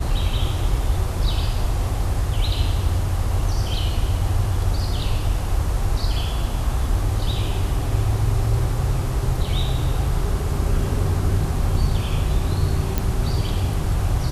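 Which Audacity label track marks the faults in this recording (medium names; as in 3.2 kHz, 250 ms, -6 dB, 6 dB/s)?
12.980000	12.980000	pop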